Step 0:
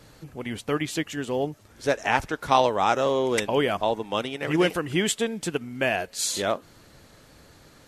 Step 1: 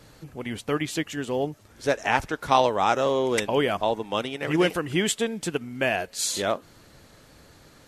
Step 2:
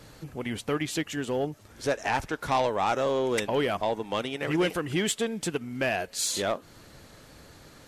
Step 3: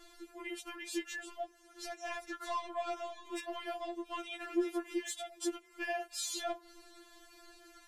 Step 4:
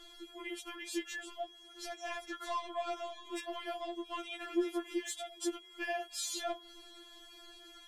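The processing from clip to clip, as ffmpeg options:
-af anull
-filter_complex "[0:a]asplit=2[a][b];[b]acompressor=threshold=-32dB:ratio=6,volume=-2dB[c];[a][c]amix=inputs=2:normalize=0,asoftclip=type=tanh:threshold=-13.5dB,volume=-3.5dB"
-af "acompressor=threshold=-30dB:ratio=4,afftfilt=real='re*4*eq(mod(b,16),0)':imag='im*4*eq(mod(b,16),0)':win_size=2048:overlap=0.75,volume=-3.5dB"
-af "aeval=exprs='val(0)+0.00178*sin(2*PI*3300*n/s)':c=same"

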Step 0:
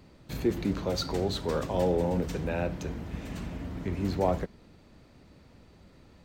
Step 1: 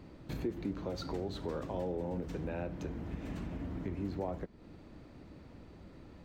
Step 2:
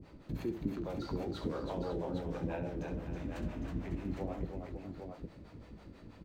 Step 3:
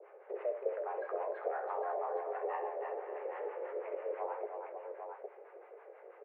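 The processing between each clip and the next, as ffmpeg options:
-af "highshelf=f=3.2k:g=-9,acompressor=threshold=-41dB:ratio=3,equalizer=f=310:t=o:w=0.35:g=5,volume=2dB"
-filter_complex "[0:a]acrossover=split=470[a][b];[a]aeval=exprs='val(0)*(1-1/2+1/2*cos(2*PI*6.1*n/s))':c=same[c];[b]aeval=exprs='val(0)*(1-1/2-1/2*cos(2*PI*6.1*n/s))':c=same[d];[c][d]amix=inputs=2:normalize=0,asplit=2[e][f];[f]adelay=18,volume=-12dB[g];[e][g]amix=inputs=2:normalize=0,aecho=1:1:66|323|551|808:0.376|0.531|0.266|0.501,volume=2.5dB"
-af "highpass=f=150:t=q:w=0.5412,highpass=f=150:t=q:w=1.307,lowpass=f=2k:t=q:w=0.5176,lowpass=f=2k:t=q:w=0.7071,lowpass=f=2k:t=q:w=1.932,afreqshift=250,volume=1dB"

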